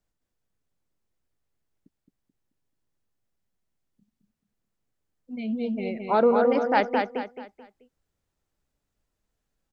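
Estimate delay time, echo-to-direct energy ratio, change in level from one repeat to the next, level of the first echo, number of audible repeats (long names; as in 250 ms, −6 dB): 217 ms, −4.0 dB, −9.0 dB, −4.5 dB, 4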